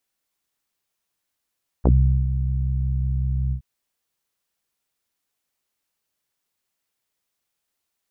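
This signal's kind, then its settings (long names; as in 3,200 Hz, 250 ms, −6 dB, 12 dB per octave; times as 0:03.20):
subtractive voice saw C2 24 dB per octave, low-pass 140 Hz, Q 1.4, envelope 3.5 octaves, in 0.07 s, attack 20 ms, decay 0.41 s, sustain −9 dB, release 0.09 s, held 1.68 s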